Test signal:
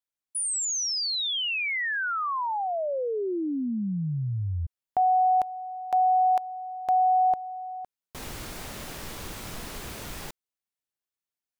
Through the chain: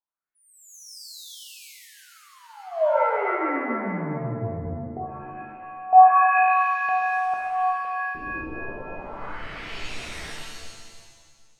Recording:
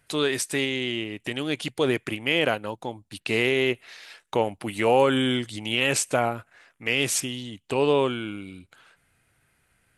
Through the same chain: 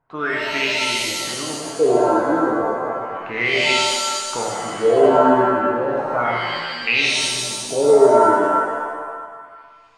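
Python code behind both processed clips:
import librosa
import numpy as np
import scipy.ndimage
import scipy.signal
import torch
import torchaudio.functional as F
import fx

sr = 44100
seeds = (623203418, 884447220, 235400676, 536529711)

y = fx.filter_lfo_lowpass(x, sr, shape='sine', hz=0.33, low_hz=310.0, high_hz=2600.0, q=5.5)
y = fx.rev_shimmer(y, sr, seeds[0], rt60_s=1.6, semitones=7, shimmer_db=-2, drr_db=-1.5)
y = y * 10.0 ** (-6.5 / 20.0)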